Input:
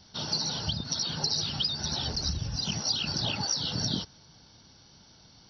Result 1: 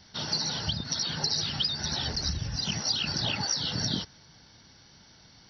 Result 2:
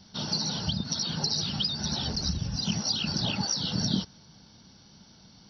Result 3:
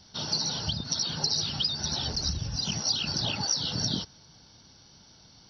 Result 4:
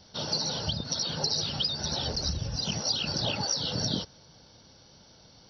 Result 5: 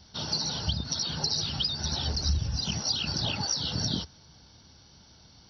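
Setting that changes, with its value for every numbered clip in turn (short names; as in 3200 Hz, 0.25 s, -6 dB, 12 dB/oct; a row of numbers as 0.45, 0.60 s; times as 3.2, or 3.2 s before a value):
bell, frequency: 1900, 200, 8400, 530, 70 Hz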